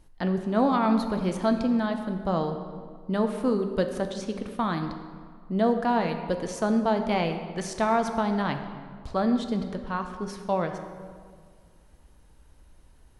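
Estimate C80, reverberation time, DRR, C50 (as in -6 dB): 9.0 dB, 1.9 s, 6.0 dB, 8.0 dB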